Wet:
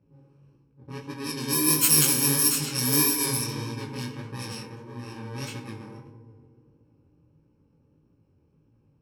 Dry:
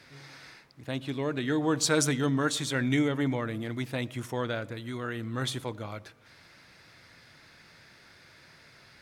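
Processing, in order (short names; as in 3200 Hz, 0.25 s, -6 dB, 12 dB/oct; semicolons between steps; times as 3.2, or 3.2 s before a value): FFT order left unsorted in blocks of 64 samples; FDN reverb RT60 2.9 s, high-frequency decay 0.65×, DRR 4.5 dB; chorus 1.6 Hz, delay 17 ms, depth 7.2 ms; low-pass opened by the level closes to 440 Hz, open at -25.5 dBFS; high shelf 3700 Hz +11 dB; gain +2 dB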